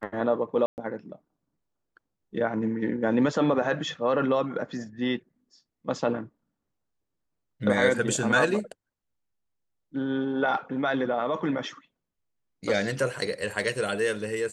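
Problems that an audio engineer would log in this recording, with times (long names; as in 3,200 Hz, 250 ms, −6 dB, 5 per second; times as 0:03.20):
0:00.66–0:00.78: drop-out 119 ms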